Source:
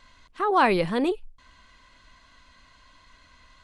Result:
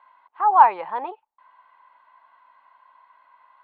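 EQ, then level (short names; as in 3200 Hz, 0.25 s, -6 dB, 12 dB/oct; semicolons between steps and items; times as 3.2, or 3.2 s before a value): resonant high-pass 880 Hz, resonance Q 7.4; air absorption 460 m; tape spacing loss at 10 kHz 21 dB; 0.0 dB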